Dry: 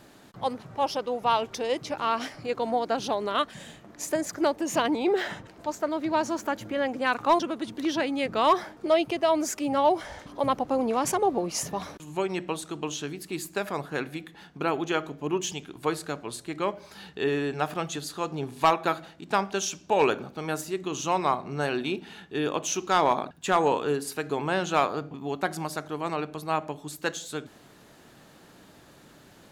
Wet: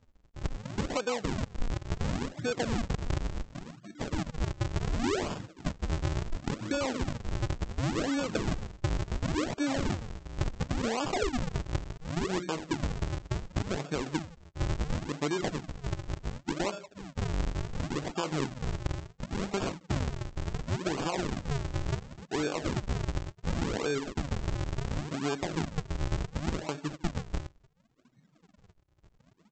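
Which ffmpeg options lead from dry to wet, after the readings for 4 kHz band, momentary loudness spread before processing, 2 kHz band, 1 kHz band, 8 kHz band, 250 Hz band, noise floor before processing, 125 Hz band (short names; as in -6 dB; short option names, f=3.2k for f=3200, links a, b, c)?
-5.5 dB, 11 LU, -6.0 dB, -12.5 dB, -8.0 dB, -3.0 dB, -54 dBFS, +7.5 dB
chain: -af "afftdn=nr=30:nf=-39,alimiter=limit=-21.5dB:level=0:latency=1:release=39,acompressor=threshold=-35dB:ratio=4,aresample=16000,acrusher=samples=39:mix=1:aa=0.000001:lfo=1:lforange=62.4:lforate=0.7,aresample=44100,volume=6.5dB"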